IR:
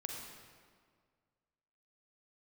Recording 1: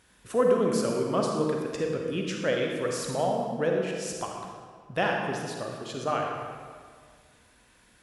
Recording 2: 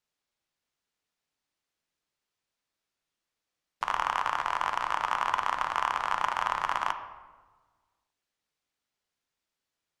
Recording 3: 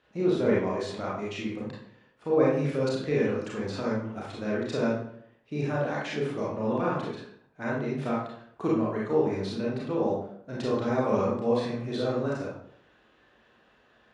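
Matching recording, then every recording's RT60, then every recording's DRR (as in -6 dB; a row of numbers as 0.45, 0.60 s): 1; 1.9, 1.4, 0.65 s; 0.5, 6.5, -6.0 dB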